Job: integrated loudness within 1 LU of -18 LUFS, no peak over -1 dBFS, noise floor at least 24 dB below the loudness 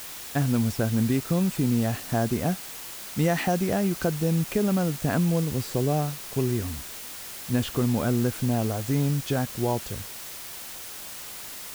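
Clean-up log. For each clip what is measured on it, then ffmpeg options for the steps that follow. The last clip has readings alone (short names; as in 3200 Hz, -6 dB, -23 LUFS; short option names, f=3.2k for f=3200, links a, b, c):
noise floor -39 dBFS; noise floor target -51 dBFS; loudness -27.0 LUFS; peak -11.0 dBFS; loudness target -18.0 LUFS
-> -af "afftdn=nr=12:nf=-39"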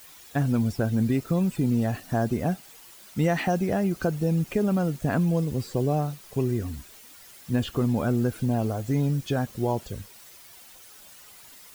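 noise floor -49 dBFS; noise floor target -51 dBFS
-> -af "afftdn=nr=6:nf=-49"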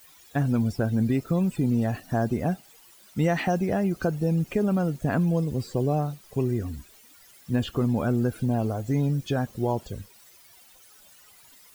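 noise floor -54 dBFS; loudness -26.5 LUFS; peak -11.5 dBFS; loudness target -18.0 LUFS
-> -af "volume=8.5dB"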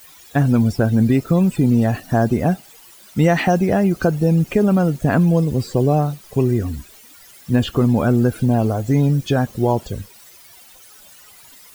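loudness -18.0 LUFS; peak -3.0 dBFS; noise floor -46 dBFS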